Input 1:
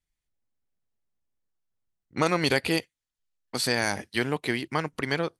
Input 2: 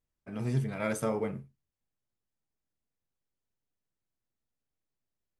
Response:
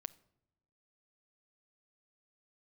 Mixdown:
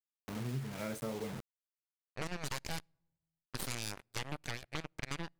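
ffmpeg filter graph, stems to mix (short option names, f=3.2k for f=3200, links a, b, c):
-filter_complex "[0:a]aeval=exprs='sgn(val(0))*max(abs(val(0))-0.0119,0)':c=same,aeval=exprs='0.335*(cos(1*acos(clip(val(0)/0.335,-1,1)))-cos(1*PI/2))+0.0944*(cos(3*acos(clip(val(0)/0.335,-1,1)))-cos(3*PI/2))+0.133*(cos(6*acos(clip(val(0)/0.335,-1,1)))-cos(6*PI/2))':c=same,volume=-4.5dB,asplit=2[a][b];[b]volume=-18.5dB[c];[1:a]lowshelf=f=380:g=5.5,acrusher=bits=5:mix=0:aa=0.000001,volume=-5dB,asplit=2[d][e];[e]apad=whole_len=237927[f];[a][f]sidechaincompress=threshold=-48dB:ratio=4:attack=16:release=1270[g];[2:a]atrim=start_sample=2205[h];[c][h]afir=irnorm=-1:irlink=0[i];[g][d][i]amix=inputs=3:normalize=0,acompressor=threshold=-39dB:ratio=2.5"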